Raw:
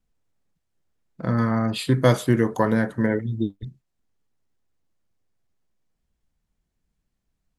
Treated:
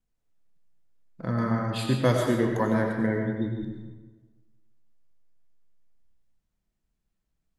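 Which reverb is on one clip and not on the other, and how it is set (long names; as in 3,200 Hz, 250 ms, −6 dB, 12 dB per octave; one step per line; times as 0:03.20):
comb and all-pass reverb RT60 1.3 s, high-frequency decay 0.7×, pre-delay 55 ms, DRR 1.5 dB
level −5.5 dB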